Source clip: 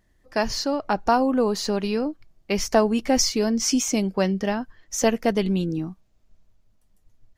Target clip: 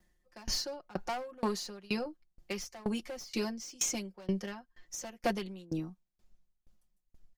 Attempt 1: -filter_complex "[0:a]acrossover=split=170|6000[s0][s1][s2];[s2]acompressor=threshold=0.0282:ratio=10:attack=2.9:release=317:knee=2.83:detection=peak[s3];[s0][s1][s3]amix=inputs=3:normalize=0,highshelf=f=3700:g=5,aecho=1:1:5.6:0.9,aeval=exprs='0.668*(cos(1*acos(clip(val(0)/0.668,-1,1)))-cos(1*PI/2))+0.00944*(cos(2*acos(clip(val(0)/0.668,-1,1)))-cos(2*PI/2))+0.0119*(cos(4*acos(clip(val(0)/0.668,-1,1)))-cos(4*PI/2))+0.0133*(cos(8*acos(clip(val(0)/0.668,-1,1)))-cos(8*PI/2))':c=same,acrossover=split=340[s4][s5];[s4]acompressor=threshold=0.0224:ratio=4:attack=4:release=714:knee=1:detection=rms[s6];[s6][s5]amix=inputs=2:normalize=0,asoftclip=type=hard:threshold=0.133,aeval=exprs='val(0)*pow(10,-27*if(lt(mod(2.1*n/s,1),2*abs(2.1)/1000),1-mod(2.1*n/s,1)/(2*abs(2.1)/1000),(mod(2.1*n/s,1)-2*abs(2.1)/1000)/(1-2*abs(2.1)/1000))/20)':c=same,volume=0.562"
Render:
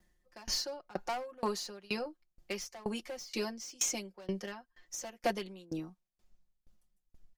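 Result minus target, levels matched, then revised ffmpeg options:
compression: peak gain reduction +7 dB
-filter_complex "[0:a]acrossover=split=170|6000[s0][s1][s2];[s2]acompressor=threshold=0.0282:ratio=10:attack=2.9:release=317:knee=2.83:detection=peak[s3];[s0][s1][s3]amix=inputs=3:normalize=0,highshelf=f=3700:g=5,aecho=1:1:5.6:0.9,aeval=exprs='0.668*(cos(1*acos(clip(val(0)/0.668,-1,1)))-cos(1*PI/2))+0.00944*(cos(2*acos(clip(val(0)/0.668,-1,1)))-cos(2*PI/2))+0.0119*(cos(4*acos(clip(val(0)/0.668,-1,1)))-cos(4*PI/2))+0.0133*(cos(8*acos(clip(val(0)/0.668,-1,1)))-cos(8*PI/2))':c=same,acrossover=split=340[s4][s5];[s4]acompressor=threshold=0.0668:ratio=4:attack=4:release=714:knee=1:detection=rms[s6];[s6][s5]amix=inputs=2:normalize=0,asoftclip=type=hard:threshold=0.133,aeval=exprs='val(0)*pow(10,-27*if(lt(mod(2.1*n/s,1),2*abs(2.1)/1000),1-mod(2.1*n/s,1)/(2*abs(2.1)/1000),(mod(2.1*n/s,1)-2*abs(2.1)/1000)/(1-2*abs(2.1)/1000))/20)':c=same,volume=0.562"

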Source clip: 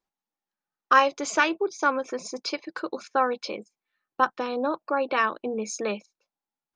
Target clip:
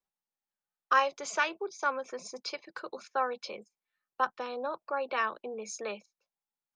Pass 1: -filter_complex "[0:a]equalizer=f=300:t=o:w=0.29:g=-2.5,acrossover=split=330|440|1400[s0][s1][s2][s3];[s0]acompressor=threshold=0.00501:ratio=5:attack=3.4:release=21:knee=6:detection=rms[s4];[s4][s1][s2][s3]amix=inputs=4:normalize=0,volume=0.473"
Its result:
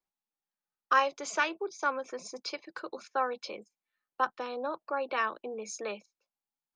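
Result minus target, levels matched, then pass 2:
250 Hz band +2.5 dB
-filter_complex "[0:a]equalizer=f=300:t=o:w=0.29:g=-10.5,acrossover=split=330|440|1400[s0][s1][s2][s3];[s0]acompressor=threshold=0.00501:ratio=5:attack=3.4:release=21:knee=6:detection=rms[s4];[s4][s1][s2][s3]amix=inputs=4:normalize=0,volume=0.473"

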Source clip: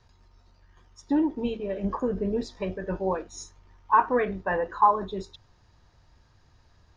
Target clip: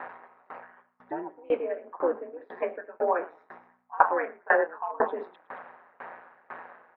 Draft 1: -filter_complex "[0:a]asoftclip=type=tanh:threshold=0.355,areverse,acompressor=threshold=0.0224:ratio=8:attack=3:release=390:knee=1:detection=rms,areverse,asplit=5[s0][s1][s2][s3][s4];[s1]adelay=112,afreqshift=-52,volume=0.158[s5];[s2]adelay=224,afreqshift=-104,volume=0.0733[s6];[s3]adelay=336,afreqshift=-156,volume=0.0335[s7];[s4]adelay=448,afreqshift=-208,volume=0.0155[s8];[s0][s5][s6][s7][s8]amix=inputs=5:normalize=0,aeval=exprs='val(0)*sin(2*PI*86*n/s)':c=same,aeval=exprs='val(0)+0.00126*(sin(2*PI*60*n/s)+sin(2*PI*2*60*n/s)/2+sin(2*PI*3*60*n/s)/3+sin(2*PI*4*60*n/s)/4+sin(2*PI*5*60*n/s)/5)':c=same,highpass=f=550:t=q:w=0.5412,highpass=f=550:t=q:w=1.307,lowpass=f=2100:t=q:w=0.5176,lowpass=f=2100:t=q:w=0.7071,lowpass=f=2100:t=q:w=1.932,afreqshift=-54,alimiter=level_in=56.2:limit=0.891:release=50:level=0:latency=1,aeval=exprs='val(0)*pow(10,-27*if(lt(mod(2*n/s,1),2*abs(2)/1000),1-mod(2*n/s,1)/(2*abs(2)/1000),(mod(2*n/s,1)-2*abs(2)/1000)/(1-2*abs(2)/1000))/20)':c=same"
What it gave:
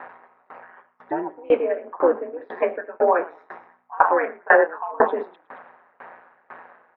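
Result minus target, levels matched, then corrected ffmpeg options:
compression: peak gain reduction -8.5 dB
-filter_complex "[0:a]asoftclip=type=tanh:threshold=0.355,areverse,acompressor=threshold=0.0075:ratio=8:attack=3:release=390:knee=1:detection=rms,areverse,asplit=5[s0][s1][s2][s3][s4];[s1]adelay=112,afreqshift=-52,volume=0.158[s5];[s2]adelay=224,afreqshift=-104,volume=0.0733[s6];[s3]adelay=336,afreqshift=-156,volume=0.0335[s7];[s4]adelay=448,afreqshift=-208,volume=0.0155[s8];[s0][s5][s6][s7][s8]amix=inputs=5:normalize=0,aeval=exprs='val(0)*sin(2*PI*86*n/s)':c=same,aeval=exprs='val(0)+0.00126*(sin(2*PI*60*n/s)+sin(2*PI*2*60*n/s)/2+sin(2*PI*3*60*n/s)/3+sin(2*PI*4*60*n/s)/4+sin(2*PI*5*60*n/s)/5)':c=same,highpass=f=550:t=q:w=0.5412,highpass=f=550:t=q:w=1.307,lowpass=f=2100:t=q:w=0.5176,lowpass=f=2100:t=q:w=0.7071,lowpass=f=2100:t=q:w=1.932,afreqshift=-54,alimiter=level_in=56.2:limit=0.891:release=50:level=0:latency=1,aeval=exprs='val(0)*pow(10,-27*if(lt(mod(2*n/s,1),2*abs(2)/1000),1-mod(2*n/s,1)/(2*abs(2)/1000),(mod(2*n/s,1)-2*abs(2)/1000)/(1-2*abs(2)/1000))/20)':c=same"

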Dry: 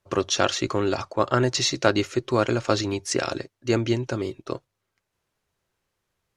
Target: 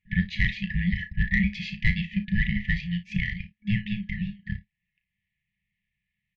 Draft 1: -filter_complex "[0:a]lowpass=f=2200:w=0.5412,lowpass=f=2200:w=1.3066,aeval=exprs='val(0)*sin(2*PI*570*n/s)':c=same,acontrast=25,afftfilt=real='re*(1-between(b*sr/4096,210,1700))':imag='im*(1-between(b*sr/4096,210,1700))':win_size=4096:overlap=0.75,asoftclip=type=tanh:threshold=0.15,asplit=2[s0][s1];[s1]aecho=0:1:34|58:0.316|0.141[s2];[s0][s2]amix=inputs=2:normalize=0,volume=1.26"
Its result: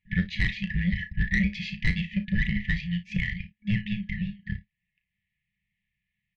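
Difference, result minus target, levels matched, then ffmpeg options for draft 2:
saturation: distortion +10 dB
-filter_complex "[0:a]lowpass=f=2200:w=0.5412,lowpass=f=2200:w=1.3066,aeval=exprs='val(0)*sin(2*PI*570*n/s)':c=same,acontrast=25,afftfilt=real='re*(1-between(b*sr/4096,210,1700))':imag='im*(1-between(b*sr/4096,210,1700))':win_size=4096:overlap=0.75,asoftclip=type=tanh:threshold=0.335,asplit=2[s0][s1];[s1]aecho=0:1:34|58:0.316|0.141[s2];[s0][s2]amix=inputs=2:normalize=0,volume=1.26"

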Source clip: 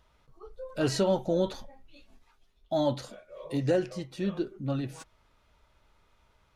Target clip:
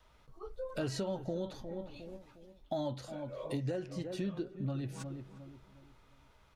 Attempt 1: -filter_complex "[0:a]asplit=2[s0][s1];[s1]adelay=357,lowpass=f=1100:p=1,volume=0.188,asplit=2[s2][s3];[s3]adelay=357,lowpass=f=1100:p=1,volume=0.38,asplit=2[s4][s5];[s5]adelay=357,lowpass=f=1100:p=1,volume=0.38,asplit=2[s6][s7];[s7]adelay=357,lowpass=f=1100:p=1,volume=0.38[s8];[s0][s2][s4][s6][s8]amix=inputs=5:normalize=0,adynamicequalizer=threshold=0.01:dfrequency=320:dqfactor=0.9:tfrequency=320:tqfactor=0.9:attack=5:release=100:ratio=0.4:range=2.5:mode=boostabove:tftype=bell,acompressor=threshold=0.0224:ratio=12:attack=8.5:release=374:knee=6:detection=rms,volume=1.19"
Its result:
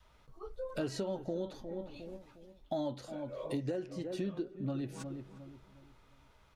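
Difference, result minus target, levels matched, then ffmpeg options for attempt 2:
125 Hz band -3.5 dB
-filter_complex "[0:a]asplit=2[s0][s1];[s1]adelay=357,lowpass=f=1100:p=1,volume=0.188,asplit=2[s2][s3];[s3]adelay=357,lowpass=f=1100:p=1,volume=0.38,asplit=2[s4][s5];[s5]adelay=357,lowpass=f=1100:p=1,volume=0.38,asplit=2[s6][s7];[s7]adelay=357,lowpass=f=1100:p=1,volume=0.38[s8];[s0][s2][s4][s6][s8]amix=inputs=5:normalize=0,adynamicequalizer=threshold=0.01:dfrequency=110:dqfactor=0.9:tfrequency=110:tqfactor=0.9:attack=5:release=100:ratio=0.4:range=2.5:mode=boostabove:tftype=bell,acompressor=threshold=0.0224:ratio=12:attack=8.5:release=374:knee=6:detection=rms,volume=1.19"

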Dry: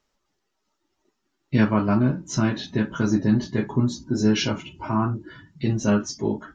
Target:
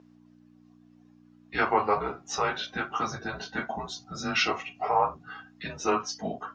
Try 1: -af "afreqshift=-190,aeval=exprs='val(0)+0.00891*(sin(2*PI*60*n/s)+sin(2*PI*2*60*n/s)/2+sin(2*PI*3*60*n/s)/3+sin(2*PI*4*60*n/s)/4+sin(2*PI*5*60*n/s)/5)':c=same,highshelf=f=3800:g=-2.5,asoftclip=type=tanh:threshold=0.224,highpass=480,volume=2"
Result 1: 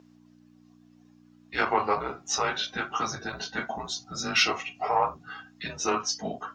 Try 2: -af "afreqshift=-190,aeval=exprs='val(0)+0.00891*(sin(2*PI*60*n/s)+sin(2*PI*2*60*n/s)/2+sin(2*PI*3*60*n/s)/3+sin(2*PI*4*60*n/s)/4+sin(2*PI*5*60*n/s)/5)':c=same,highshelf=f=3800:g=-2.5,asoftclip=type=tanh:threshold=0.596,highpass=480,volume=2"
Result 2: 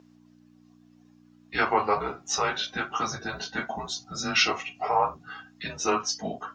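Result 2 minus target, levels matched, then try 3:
8 kHz band +5.0 dB
-af "afreqshift=-190,aeval=exprs='val(0)+0.00891*(sin(2*PI*60*n/s)+sin(2*PI*2*60*n/s)/2+sin(2*PI*3*60*n/s)/3+sin(2*PI*4*60*n/s)/4+sin(2*PI*5*60*n/s)/5)':c=same,highshelf=f=3800:g=-12,asoftclip=type=tanh:threshold=0.596,highpass=480,volume=2"

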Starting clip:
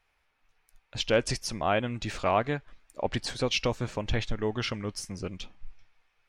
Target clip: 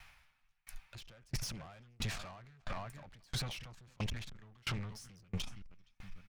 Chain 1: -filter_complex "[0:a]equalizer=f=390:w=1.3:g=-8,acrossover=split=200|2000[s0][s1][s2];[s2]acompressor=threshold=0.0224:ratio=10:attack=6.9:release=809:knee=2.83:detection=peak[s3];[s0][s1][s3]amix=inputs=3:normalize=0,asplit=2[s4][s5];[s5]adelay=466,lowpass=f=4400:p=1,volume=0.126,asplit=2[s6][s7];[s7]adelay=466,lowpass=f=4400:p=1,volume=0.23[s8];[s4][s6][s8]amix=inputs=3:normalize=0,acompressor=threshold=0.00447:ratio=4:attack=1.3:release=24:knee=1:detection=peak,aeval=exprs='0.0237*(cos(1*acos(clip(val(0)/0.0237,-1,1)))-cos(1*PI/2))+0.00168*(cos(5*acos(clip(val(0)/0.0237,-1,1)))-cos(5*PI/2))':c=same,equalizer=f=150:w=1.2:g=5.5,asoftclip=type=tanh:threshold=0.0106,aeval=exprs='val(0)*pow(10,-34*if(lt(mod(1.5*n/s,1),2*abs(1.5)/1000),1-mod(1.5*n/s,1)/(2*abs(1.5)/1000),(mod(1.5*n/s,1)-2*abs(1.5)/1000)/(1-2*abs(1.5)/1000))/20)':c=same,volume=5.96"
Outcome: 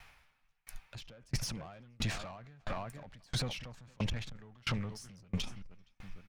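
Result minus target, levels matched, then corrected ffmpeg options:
saturation: distortion -7 dB; 500 Hz band +2.0 dB
-filter_complex "[0:a]equalizer=f=390:w=1.3:g=-19,acrossover=split=200|2000[s0][s1][s2];[s2]acompressor=threshold=0.0224:ratio=10:attack=6.9:release=809:knee=2.83:detection=peak[s3];[s0][s1][s3]amix=inputs=3:normalize=0,asplit=2[s4][s5];[s5]adelay=466,lowpass=f=4400:p=1,volume=0.126,asplit=2[s6][s7];[s7]adelay=466,lowpass=f=4400:p=1,volume=0.23[s8];[s4][s6][s8]amix=inputs=3:normalize=0,acompressor=threshold=0.00447:ratio=4:attack=1.3:release=24:knee=1:detection=peak,aeval=exprs='0.0237*(cos(1*acos(clip(val(0)/0.0237,-1,1)))-cos(1*PI/2))+0.00168*(cos(5*acos(clip(val(0)/0.0237,-1,1)))-cos(5*PI/2))':c=same,equalizer=f=150:w=1.2:g=5.5,asoftclip=type=tanh:threshold=0.00501,aeval=exprs='val(0)*pow(10,-34*if(lt(mod(1.5*n/s,1),2*abs(1.5)/1000),1-mod(1.5*n/s,1)/(2*abs(1.5)/1000),(mod(1.5*n/s,1)-2*abs(1.5)/1000)/(1-2*abs(1.5)/1000))/20)':c=same,volume=5.96"

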